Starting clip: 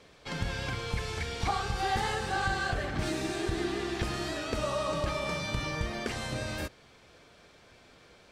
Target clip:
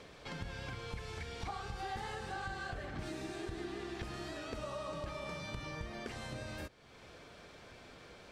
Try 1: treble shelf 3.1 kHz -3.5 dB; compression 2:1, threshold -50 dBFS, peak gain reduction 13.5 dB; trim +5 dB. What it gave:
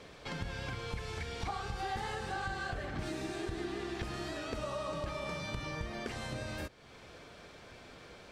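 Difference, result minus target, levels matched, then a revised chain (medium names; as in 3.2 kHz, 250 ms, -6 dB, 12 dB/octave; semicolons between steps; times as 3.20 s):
compression: peak gain reduction -3.5 dB
treble shelf 3.1 kHz -3.5 dB; compression 2:1, threshold -57.5 dBFS, peak gain reduction 17 dB; trim +5 dB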